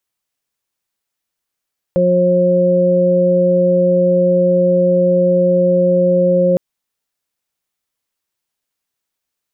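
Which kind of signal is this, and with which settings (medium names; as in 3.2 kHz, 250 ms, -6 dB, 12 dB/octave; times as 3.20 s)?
steady additive tone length 4.61 s, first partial 179 Hz, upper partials -6/4.5 dB, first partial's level -15.5 dB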